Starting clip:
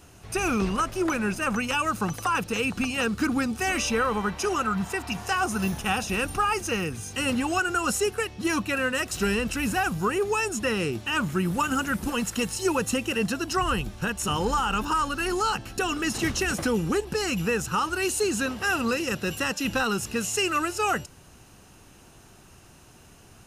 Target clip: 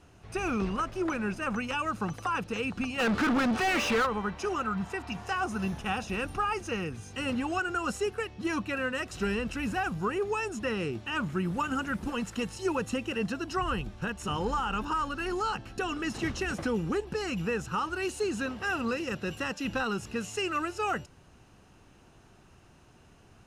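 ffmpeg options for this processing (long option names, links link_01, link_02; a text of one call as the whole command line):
ffmpeg -i in.wav -filter_complex "[0:a]aemphasis=mode=reproduction:type=50fm,asplit=3[link_01][link_02][link_03];[link_01]afade=type=out:start_time=2.98:duration=0.02[link_04];[link_02]asplit=2[link_05][link_06];[link_06]highpass=frequency=720:poles=1,volume=30dB,asoftclip=type=tanh:threshold=-14dB[link_07];[link_05][link_07]amix=inputs=2:normalize=0,lowpass=frequency=2100:poles=1,volume=-6dB,afade=type=in:start_time=2.98:duration=0.02,afade=type=out:start_time=4.05:duration=0.02[link_08];[link_03]afade=type=in:start_time=4.05:duration=0.02[link_09];[link_04][link_08][link_09]amix=inputs=3:normalize=0,volume=-5dB" out.wav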